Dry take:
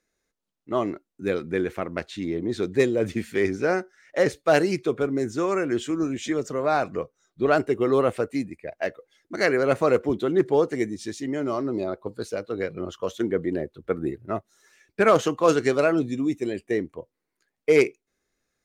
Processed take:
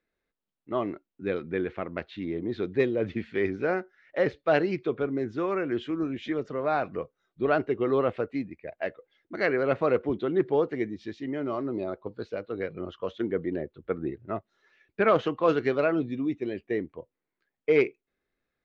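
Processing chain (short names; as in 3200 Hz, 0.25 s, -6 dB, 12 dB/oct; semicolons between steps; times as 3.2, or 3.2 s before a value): LPF 3700 Hz 24 dB/oct; gain -4 dB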